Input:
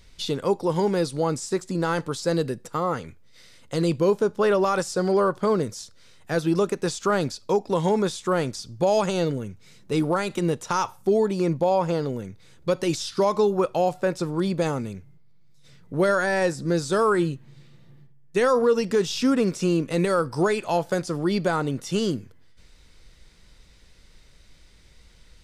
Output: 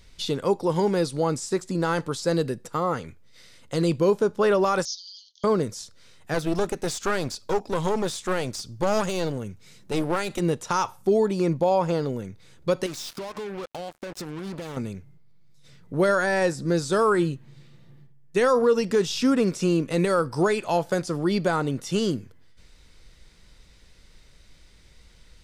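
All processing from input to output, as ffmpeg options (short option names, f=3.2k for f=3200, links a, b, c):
-filter_complex "[0:a]asettb=1/sr,asplit=3[a][b][c];[a]atrim=end=4.854[d];[b]atrim=start=4.85:end=5.44,asetpts=PTS-STARTPTS,afade=t=in:d=0.004:c=qsin,afade=t=out:st=0.586:d=0.004:c=qsin,asuperpass=centerf=4500:order=20:qfactor=1.3,highshelf=f=4.8k:g=9[e];[c]atrim=start=5.436[f];[d][e]acrossfade=d=0.004:c1=hsin:c2=qsin[g];[g][f]acrossfade=d=0.004:c1=qsin:c2=hsin,asettb=1/sr,asplit=3[h][i][j];[h]atrim=end=6.344[k];[i]atrim=start=6.34:end=10.4,asetpts=PTS-STARTPTS,afade=t=in:d=0.004:c=qsin,afade=t=out:st=4.056:d=0.004:c=qsin,highshelf=f=5.7k:g=3.5,aeval=exprs='clip(val(0),-1,0.0282)':c=same[l];[j]atrim=start=10.396[m];[k][l]acrossfade=d=0.004:c1=hsin:c2=qsin[n];[n][m]acrossfade=d=0.004:c1=qsin:c2=hsin,asettb=1/sr,asplit=3[o][p][q];[o]atrim=end=12.864[r];[p]atrim=start=12.86:end=14.77,asetpts=PTS-STARTPTS,afade=t=in:d=0.004:c=qsin,afade=t=out:st=1.906:d=0.004:c=qsin,acompressor=threshold=-31dB:ratio=12:attack=3.2:release=140:knee=1:detection=peak,acrusher=bits=5:mix=0:aa=0.5[s];[q]atrim=start=14.766[t];[r][s]acrossfade=d=0.004:c1=hsin:c2=qsin[u];[u][t]acrossfade=d=0.004:c1=qsin:c2=hsin"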